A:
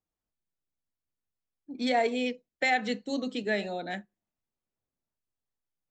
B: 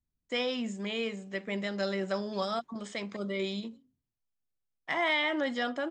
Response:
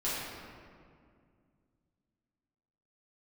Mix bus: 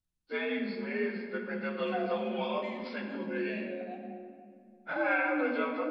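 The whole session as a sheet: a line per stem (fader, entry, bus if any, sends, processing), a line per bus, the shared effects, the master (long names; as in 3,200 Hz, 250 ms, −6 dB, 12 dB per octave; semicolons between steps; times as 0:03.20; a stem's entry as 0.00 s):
−16.0 dB, 0.00 s, send −3.5 dB, leveller curve on the samples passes 2; formant filter that steps through the vowels 2.1 Hz
−3.0 dB, 0.00 s, send −7.5 dB, partials spread apart or drawn together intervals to 86%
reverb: on, RT60 2.2 s, pre-delay 6 ms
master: no processing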